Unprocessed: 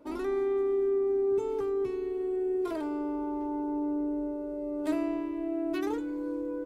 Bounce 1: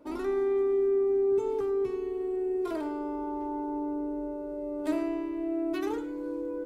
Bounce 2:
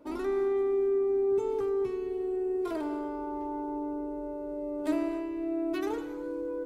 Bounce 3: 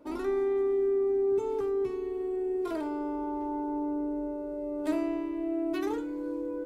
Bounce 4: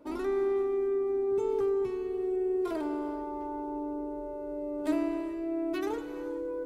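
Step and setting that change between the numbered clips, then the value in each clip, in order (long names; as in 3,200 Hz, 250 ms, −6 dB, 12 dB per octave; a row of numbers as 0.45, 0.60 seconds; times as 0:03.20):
reverb whose tail is shaped and stops, gate: 130, 310, 90, 460 milliseconds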